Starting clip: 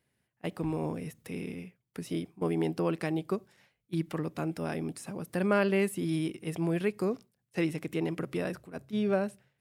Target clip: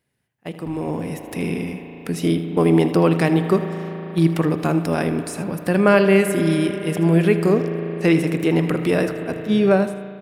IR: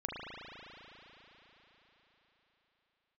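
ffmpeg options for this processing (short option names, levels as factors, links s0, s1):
-filter_complex "[0:a]atempo=0.94,aecho=1:1:79:0.188,asplit=2[s0][s1];[1:a]atrim=start_sample=2205[s2];[s1][s2]afir=irnorm=-1:irlink=0,volume=0.335[s3];[s0][s3]amix=inputs=2:normalize=0,dynaudnorm=f=690:g=3:m=3.98"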